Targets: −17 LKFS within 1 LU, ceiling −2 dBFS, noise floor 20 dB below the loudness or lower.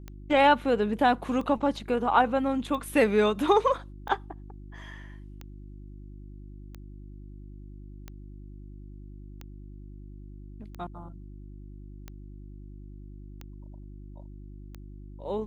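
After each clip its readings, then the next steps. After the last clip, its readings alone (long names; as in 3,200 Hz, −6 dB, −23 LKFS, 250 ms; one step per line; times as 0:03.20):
number of clicks 12; mains hum 50 Hz; hum harmonics up to 350 Hz; level of the hum −41 dBFS; integrated loudness −25.0 LKFS; sample peak −9.0 dBFS; target loudness −17.0 LKFS
→ click removal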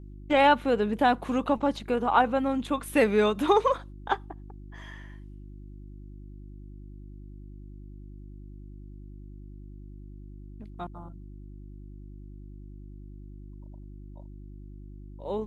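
number of clicks 0; mains hum 50 Hz; hum harmonics up to 350 Hz; level of the hum −41 dBFS
→ hum removal 50 Hz, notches 7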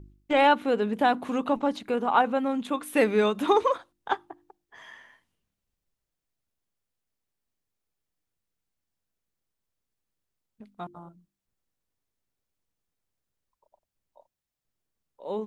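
mains hum none found; integrated loudness −25.5 LKFS; sample peak −9.0 dBFS; target loudness −17.0 LKFS
→ level +8.5 dB
brickwall limiter −2 dBFS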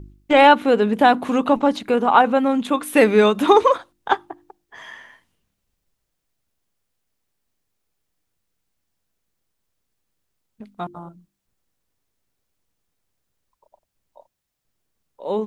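integrated loudness −17.0 LKFS; sample peak −2.0 dBFS; background noise floor −78 dBFS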